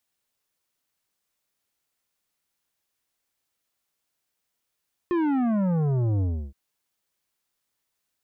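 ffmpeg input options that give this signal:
-f lavfi -i "aevalsrc='0.0794*clip((1.42-t)/0.32,0,1)*tanh(3.55*sin(2*PI*360*1.42/log(65/360)*(exp(log(65/360)*t/1.42)-1)))/tanh(3.55)':d=1.42:s=44100"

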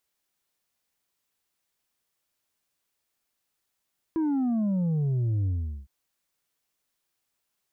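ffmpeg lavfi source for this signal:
-f lavfi -i "aevalsrc='0.0668*clip((1.71-t)/0.41,0,1)*tanh(1.58*sin(2*PI*330*1.71/log(65/330)*(exp(log(65/330)*t/1.71)-1)))/tanh(1.58)':d=1.71:s=44100"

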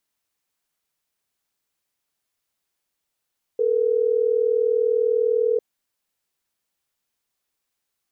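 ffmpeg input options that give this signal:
-f lavfi -i "aevalsrc='0.1*(sin(2*PI*440*t)+sin(2*PI*480*t))*clip(min(mod(t,6),2-mod(t,6))/0.005,0,1)':d=3.12:s=44100"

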